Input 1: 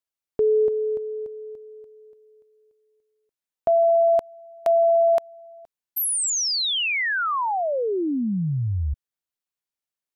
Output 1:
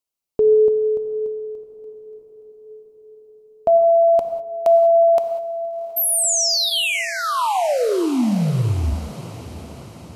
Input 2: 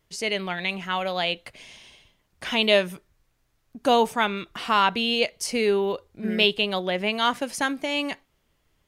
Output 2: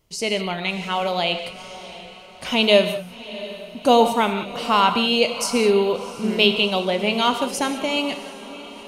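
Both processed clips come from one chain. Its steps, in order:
parametric band 1,700 Hz −10.5 dB 0.56 octaves
notch filter 3,500 Hz, Q 16
feedback delay with all-pass diffusion 715 ms, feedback 56%, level −16 dB
reverb whose tail is shaped and stops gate 220 ms flat, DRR 7.5 dB
level +4.5 dB

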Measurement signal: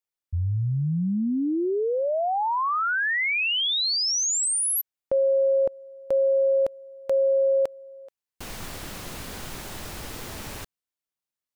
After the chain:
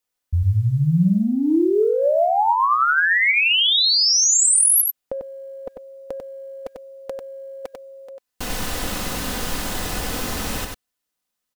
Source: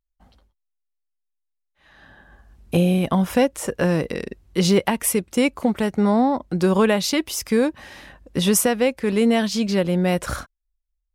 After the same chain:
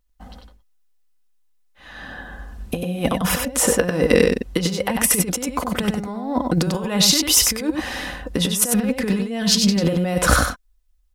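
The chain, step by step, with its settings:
notch filter 2,300 Hz, Q 23
comb filter 4 ms, depth 40%
in parallel at −1 dB: brickwall limiter −13 dBFS
on the sum: compressor whose output falls as the input rises −19 dBFS, ratio −0.5
floating-point word with a short mantissa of 6 bits
on a send: single-tap delay 95 ms −4.5 dB

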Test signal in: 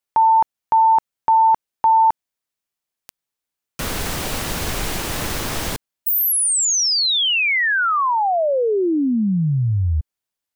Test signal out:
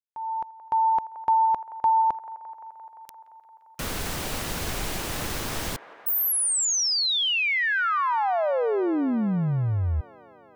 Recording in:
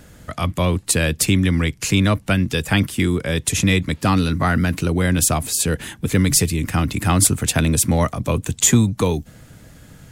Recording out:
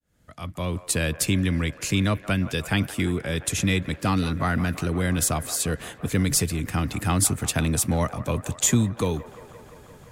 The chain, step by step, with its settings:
fade in at the beginning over 0.99 s
delay with a band-pass on its return 173 ms, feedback 80%, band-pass 970 Hz, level −14 dB
level −6 dB

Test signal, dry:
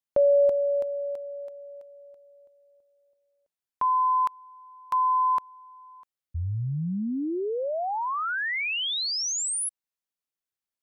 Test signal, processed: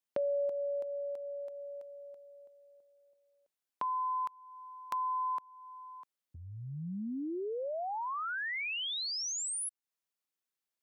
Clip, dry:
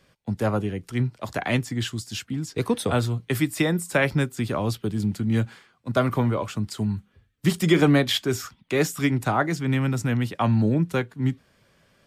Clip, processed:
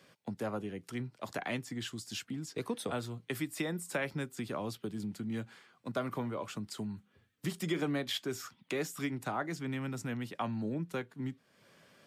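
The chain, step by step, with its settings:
downward compressor 2 to 1, threshold −42 dBFS
high-pass filter 160 Hz 12 dB per octave

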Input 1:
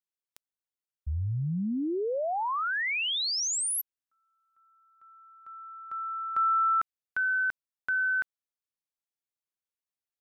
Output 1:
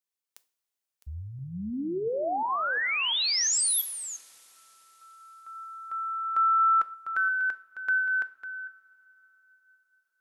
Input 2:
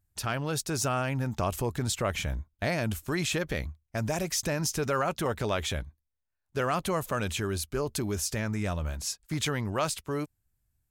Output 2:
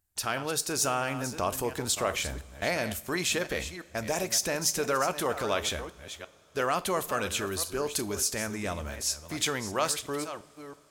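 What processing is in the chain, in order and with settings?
delay that plays each chunk backwards 347 ms, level −11 dB
bass and treble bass −9 dB, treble +3 dB
coupled-rooms reverb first 0.37 s, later 4.9 s, from −22 dB, DRR 13 dB
level +1 dB

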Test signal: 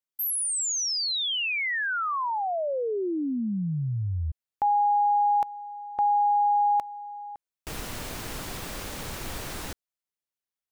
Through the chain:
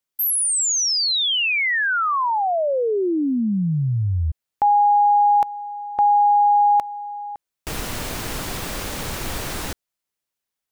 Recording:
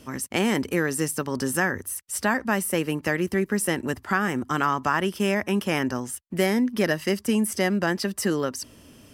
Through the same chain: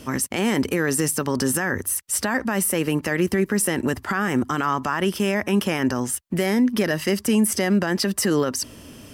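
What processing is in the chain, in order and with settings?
brickwall limiter −19.5 dBFS
level +7.5 dB

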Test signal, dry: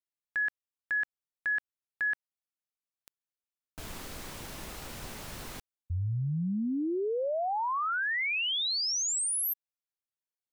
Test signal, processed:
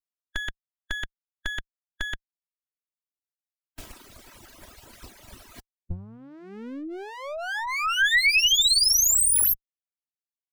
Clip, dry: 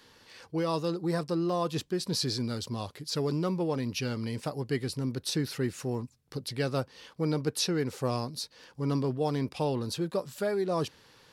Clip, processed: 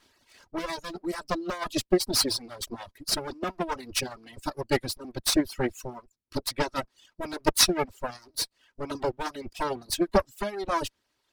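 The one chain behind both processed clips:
lower of the sound and its delayed copy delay 3.1 ms
harmonic and percussive parts rebalanced harmonic −4 dB
reverb reduction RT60 1.6 s
harmonic and percussive parts rebalanced percussive +6 dB
expander for the loud parts 1.5 to 1, over −48 dBFS
level +7.5 dB

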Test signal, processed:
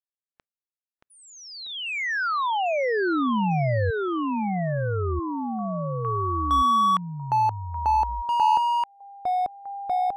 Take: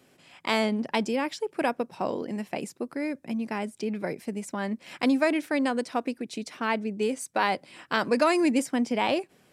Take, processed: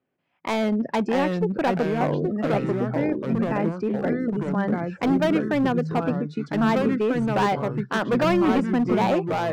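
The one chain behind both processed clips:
low-pass filter 2,000 Hz 12 dB per octave
noise reduction from a noise print of the clip's start 22 dB
hard clipping −23 dBFS
delay with pitch and tempo change per echo 551 ms, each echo −3 semitones, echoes 3
level +5 dB

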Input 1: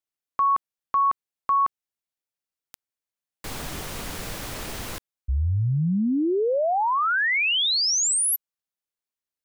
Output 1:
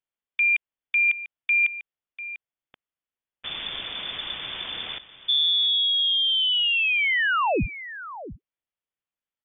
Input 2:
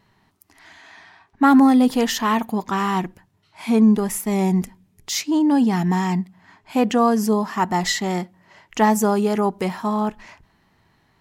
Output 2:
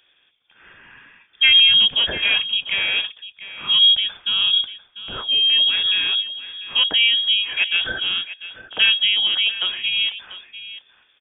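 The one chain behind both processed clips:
on a send: single-tap delay 695 ms −14.5 dB
on the sum: voice inversion scrambler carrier 3,500 Hz

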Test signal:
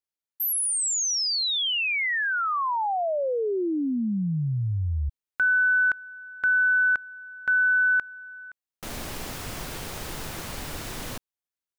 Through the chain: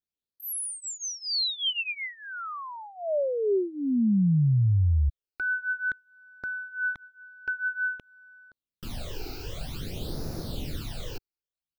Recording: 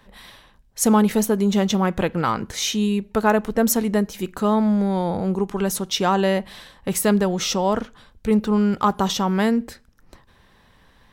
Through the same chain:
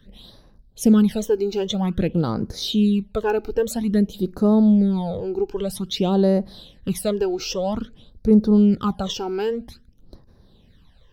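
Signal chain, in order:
high shelf with overshoot 5,100 Hz −6.5 dB, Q 1.5
all-pass phaser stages 12, 0.51 Hz, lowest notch 180–3,100 Hz
octave-band graphic EQ 1,000/2,000/8,000 Hz −10/−10/−3 dB
level +3.5 dB

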